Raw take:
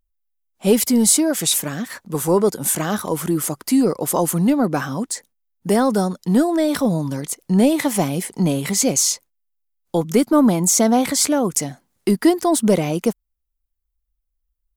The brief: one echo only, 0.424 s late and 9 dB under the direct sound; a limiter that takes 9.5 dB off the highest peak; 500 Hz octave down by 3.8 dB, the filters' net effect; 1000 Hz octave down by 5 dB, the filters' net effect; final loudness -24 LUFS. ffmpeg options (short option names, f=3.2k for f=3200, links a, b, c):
-af "equalizer=f=500:t=o:g=-3.5,equalizer=f=1k:t=o:g=-5.5,alimiter=limit=-13.5dB:level=0:latency=1,aecho=1:1:424:0.355,volume=-1.5dB"